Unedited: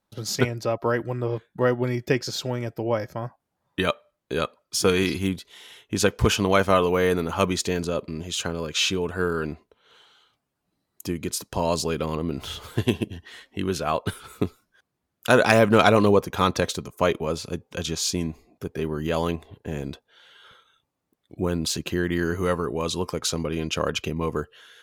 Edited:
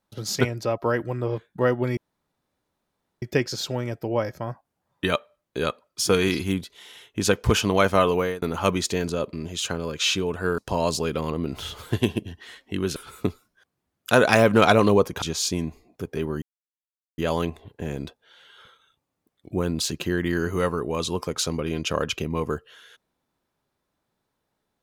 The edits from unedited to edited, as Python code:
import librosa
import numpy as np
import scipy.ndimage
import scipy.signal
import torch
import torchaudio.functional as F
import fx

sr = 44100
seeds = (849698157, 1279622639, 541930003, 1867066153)

y = fx.edit(x, sr, fx.insert_room_tone(at_s=1.97, length_s=1.25),
    fx.fade_out_span(start_s=6.92, length_s=0.25),
    fx.cut(start_s=9.33, length_s=2.1),
    fx.cut(start_s=13.81, length_s=0.32),
    fx.cut(start_s=16.39, length_s=1.45),
    fx.insert_silence(at_s=19.04, length_s=0.76), tone=tone)